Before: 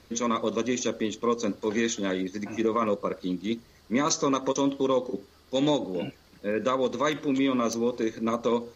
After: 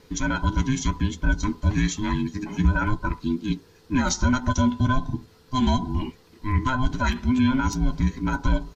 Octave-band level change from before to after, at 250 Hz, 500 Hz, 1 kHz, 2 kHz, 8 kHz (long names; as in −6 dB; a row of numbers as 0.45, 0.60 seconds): +3.5 dB, −10.0 dB, +2.5 dB, +6.5 dB, can't be measured